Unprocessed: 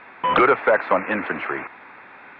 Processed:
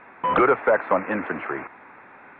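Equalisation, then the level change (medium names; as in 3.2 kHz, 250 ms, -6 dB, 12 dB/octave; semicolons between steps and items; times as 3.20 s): distance through air 350 m; treble shelf 3.3 kHz -6.5 dB; 0.0 dB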